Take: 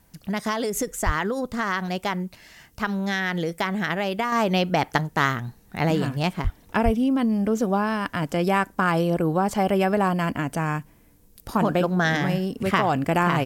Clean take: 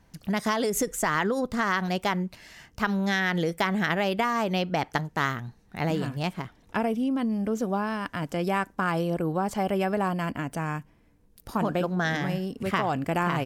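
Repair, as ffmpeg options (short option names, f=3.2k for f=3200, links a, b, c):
-filter_complex "[0:a]asplit=3[a][b][c];[a]afade=t=out:st=1.05:d=0.02[d];[b]highpass=f=140:w=0.5412,highpass=f=140:w=1.3066,afade=t=in:st=1.05:d=0.02,afade=t=out:st=1.17:d=0.02[e];[c]afade=t=in:st=1.17:d=0.02[f];[d][e][f]amix=inputs=3:normalize=0,asplit=3[g][h][i];[g]afade=t=out:st=6.43:d=0.02[j];[h]highpass=f=140:w=0.5412,highpass=f=140:w=1.3066,afade=t=in:st=6.43:d=0.02,afade=t=out:st=6.55:d=0.02[k];[i]afade=t=in:st=6.55:d=0.02[l];[j][k][l]amix=inputs=3:normalize=0,asplit=3[m][n][o];[m]afade=t=out:st=6.84:d=0.02[p];[n]highpass=f=140:w=0.5412,highpass=f=140:w=1.3066,afade=t=in:st=6.84:d=0.02,afade=t=out:st=6.96:d=0.02[q];[o]afade=t=in:st=6.96:d=0.02[r];[p][q][r]amix=inputs=3:normalize=0,agate=range=-21dB:threshold=-44dB,asetnsamples=n=441:p=0,asendcmd='4.32 volume volume -5dB',volume=0dB"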